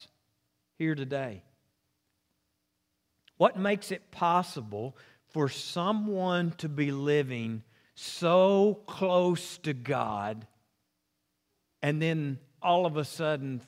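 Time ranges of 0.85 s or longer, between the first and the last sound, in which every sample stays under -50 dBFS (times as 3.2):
1.4–3.28
10.45–11.83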